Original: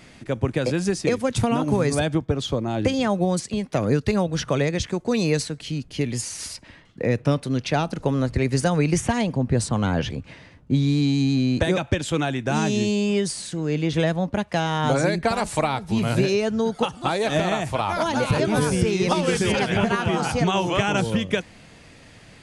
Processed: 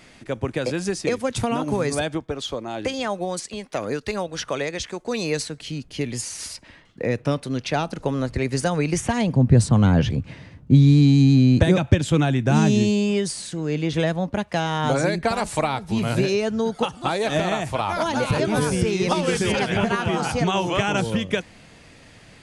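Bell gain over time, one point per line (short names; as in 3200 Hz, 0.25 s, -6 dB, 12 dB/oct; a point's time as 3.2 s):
bell 120 Hz 2.4 oct
1.89 s -5 dB
2.46 s -14 dB
4.94 s -14 dB
5.59 s -3.5 dB
9.03 s -3.5 dB
9.43 s +8.5 dB
12.67 s +8.5 dB
13.2 s -1 dB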